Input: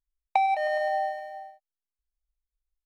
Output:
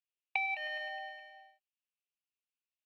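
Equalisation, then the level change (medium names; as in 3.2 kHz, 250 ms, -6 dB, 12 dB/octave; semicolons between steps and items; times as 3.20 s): band-pass filter 2.7 kHz, Q 6.3; +9.0 dB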